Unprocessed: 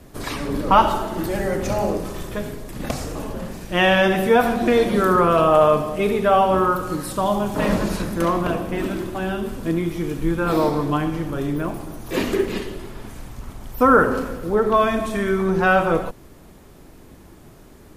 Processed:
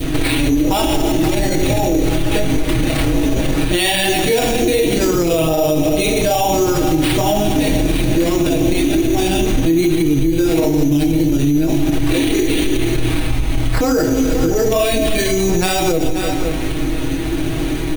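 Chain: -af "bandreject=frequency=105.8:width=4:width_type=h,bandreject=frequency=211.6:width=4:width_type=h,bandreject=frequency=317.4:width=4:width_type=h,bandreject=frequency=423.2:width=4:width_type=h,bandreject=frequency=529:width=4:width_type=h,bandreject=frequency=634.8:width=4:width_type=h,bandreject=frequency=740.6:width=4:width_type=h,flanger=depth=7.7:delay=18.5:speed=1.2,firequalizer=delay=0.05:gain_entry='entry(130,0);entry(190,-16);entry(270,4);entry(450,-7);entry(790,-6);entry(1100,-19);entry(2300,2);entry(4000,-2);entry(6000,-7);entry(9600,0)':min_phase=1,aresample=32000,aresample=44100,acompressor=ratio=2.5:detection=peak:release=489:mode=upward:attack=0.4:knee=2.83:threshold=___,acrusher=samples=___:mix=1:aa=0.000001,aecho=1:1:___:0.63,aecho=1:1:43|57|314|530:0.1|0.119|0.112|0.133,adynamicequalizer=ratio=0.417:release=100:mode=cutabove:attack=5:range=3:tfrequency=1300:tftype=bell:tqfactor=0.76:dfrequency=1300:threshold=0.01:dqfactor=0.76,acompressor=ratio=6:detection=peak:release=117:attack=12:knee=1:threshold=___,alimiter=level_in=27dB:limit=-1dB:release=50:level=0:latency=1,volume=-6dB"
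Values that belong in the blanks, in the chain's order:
-28dB, 7, 6.3, -31dB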